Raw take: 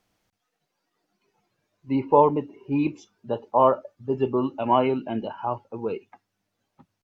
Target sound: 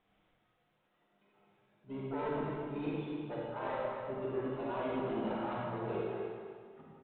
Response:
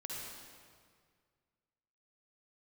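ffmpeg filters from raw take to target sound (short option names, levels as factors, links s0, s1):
-filter_complex "[0:a]bandreject=f=60:t=h:w=6,bandreject=f=120:t=h:w=6,bandreject=f=180:t=h:w=6,bandreject=f=240:t=h:w=6,bandreject=f=300:t=h:w=6,areverse,acompressor=threshold=0.0282:ratio=16,areverse,asplit=2[s0][s1];[s1]asetrate=66075,aresample=44100,atempo=0.66742,volume=0.398[s2];[s0][s2]amix=inputs=2:normalize=0,aresample=8000,asoftclip=type=tanh:threshold=0.0266,aresample=44100,aecho=1:1:248|496|744|992:0.376|0.128|0.0434|0.0148[s3];[1:a]atrim=start_sample=2205,asetrate=57330,aresample=44100[s4];[s3][s4]afir=irnorm=-1:irlink=0,volume=1.5"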